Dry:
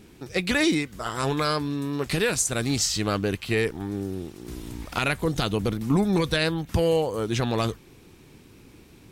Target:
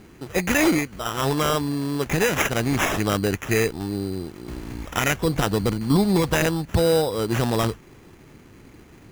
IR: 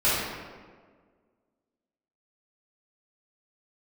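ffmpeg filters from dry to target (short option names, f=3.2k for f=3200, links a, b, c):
-af "acrusher=samples=10:mix=1:aa=0.000001,volume=3dB"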